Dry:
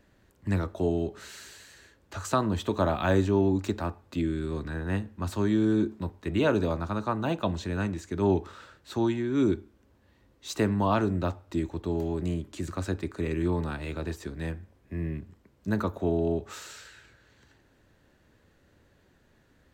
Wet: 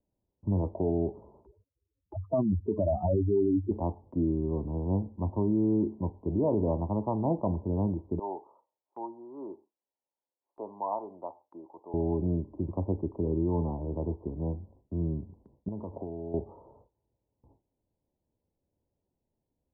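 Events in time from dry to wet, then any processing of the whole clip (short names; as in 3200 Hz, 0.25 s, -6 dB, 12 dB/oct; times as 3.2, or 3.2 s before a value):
1.46–3.71 spectral contrast raised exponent 3.3
8.19–11.94 HPF 930 Hz
15.68–16.34 compressor 16:1, threshold -34 dBFS
whole clip: steep low-pass 1000 Hz 96 dB/oct; gate with hold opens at -50 dBFS; limiter -20 dBFS; gain +1.5 dB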